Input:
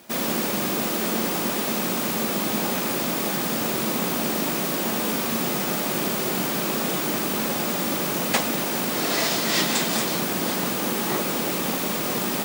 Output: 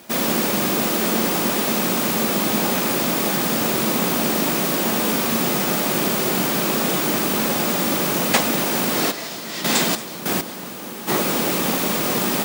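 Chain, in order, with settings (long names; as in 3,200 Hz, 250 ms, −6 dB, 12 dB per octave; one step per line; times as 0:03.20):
0:09.10–0:11.07: gate pattern "..x........xx" 98 BPM −12 dB
level +4.5 dB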